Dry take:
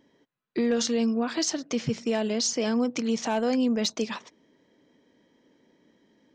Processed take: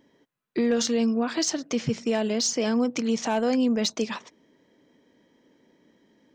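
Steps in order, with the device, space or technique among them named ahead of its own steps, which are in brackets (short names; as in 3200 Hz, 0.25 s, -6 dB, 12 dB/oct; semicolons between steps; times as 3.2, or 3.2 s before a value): exciter from parts (in parallel at -13.5 dB: HPF 3200 Hz 12 dB/oct + soft clip -29.5 dBFS, distortion -8 dB + HPF 4000 Hz); on the sum: gain +1.5 dB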